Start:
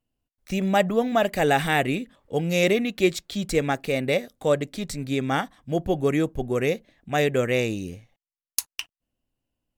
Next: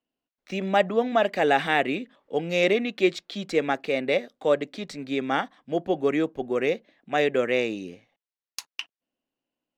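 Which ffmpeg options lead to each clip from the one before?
-filter_complex "[0:a]acrossover=split=200 5300:gain=0.0631 1 0.112[s0][s1][s2];[s0][s1][s2]amix=inputs=3:normalize=0"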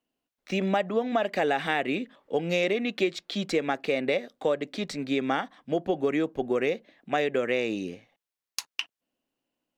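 -af "acompressor=threshold=0.0562:ratio=6,volume=1.41"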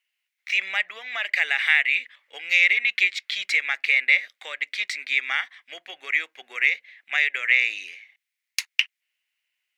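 -af "highpass=f=2100:t=q:w=5,volume=1.5"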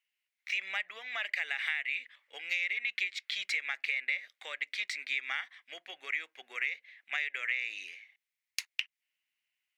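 -af "acompressor=threshold=0.0708:ratio=5,volume=0.473"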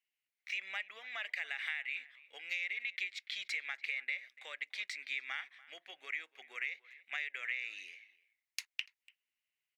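-filter_complex "[0:a]asplit=2[s0][s1];[s1]adelay=290,highpass=300,lowpass=3400,asoftclip=type=hard:threshold=0.0794,volume=0.1[s2];[s0][s2]amix=inputs=2:normalize=0,volume=0.531"

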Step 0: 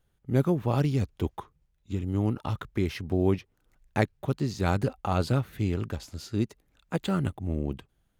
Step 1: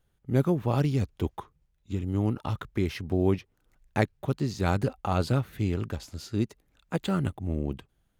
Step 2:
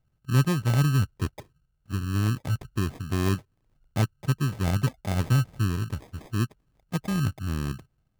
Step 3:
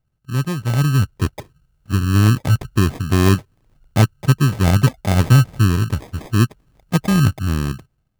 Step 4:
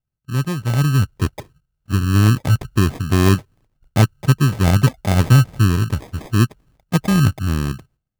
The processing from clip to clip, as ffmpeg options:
-af anull
-af "equalizer=f=125:t=o:w=1:g=8,equalizer=f=500:t=o:w=1:g=-5,equalizer=f=2000:t=o:w=1:g=-9,acrusher=samples=31:mix=1:aa=0.000001,volume=0.794"
-af "dynaudnorm=f=190:g=9:m=4.47"
-af "agate=range=0.251:threshold=0.00316:ratio=16:detection=peak"

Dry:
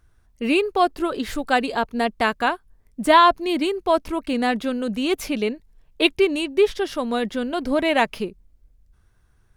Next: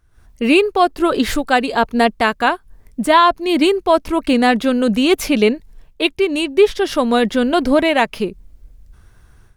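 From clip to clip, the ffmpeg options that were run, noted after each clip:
-af "dynaudnorm=f=110:g=3:m=5.01,volume=0.891"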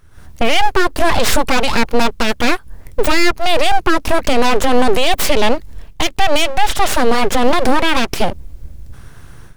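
-af "aeval=exprs='abs(val(0))':c=same,alimiter=level_in=4.47:limit=0.891:release=50:level=0:latency=1,volume=0.891"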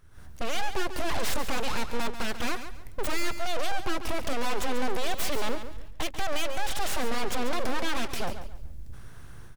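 -af "aeval=exprs='(tanh(2.82*val(0)+0.4)-tanh(0.4))/2.82':c=same,aecho=1:1:140|280|420:0.299|0.0836|0.0234,volume=0.447"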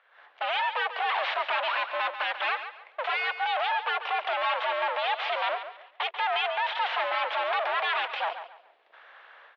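-af "highpass=f=520:t=q:w=0.5412,highpass=f=520:t=q:w=1.307,lowpass=f=3300:t=q:w=0.5176,lowpass=f=3300:t=q:w=0.7071,lowpass=f=3300:t=q:w=1.932,afreqshift=110,volume=2"

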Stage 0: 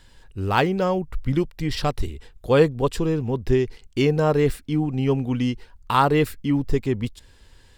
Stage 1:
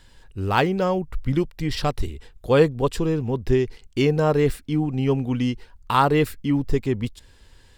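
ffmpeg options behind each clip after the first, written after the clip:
-af anull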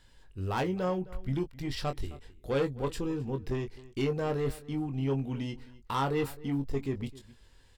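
-filter_complex "[0:a]asoftclip=type=tanh:threshold=0.178,asplit=2[s0][s1];[s1]adelay=22,volume=0.447[s2];[s0][s2]amix=inputs=2:normalize=0,asplit=2[s3][s4];[s4]adelay=262.4,volume=0.112,highshelf=f=4000:g=-5.9[s5];[s3][s5]amix=inputs=2:normalize=0,volume=0.355"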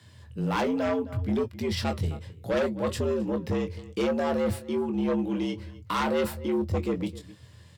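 -filter_complex "[0:a]flanger=delay=5.3:depth=4.3:regen=-74:speed=0.68:shape=sinusoidal,afreqshift=76,asplit=2[s0][s1];[s1]aeval=exprs='0.1*sin(PI/2*3.16*val(0)/0.1)':c=same,volume=0.501[s2];[s0][s2]amix=inputs=2:normalize=0"

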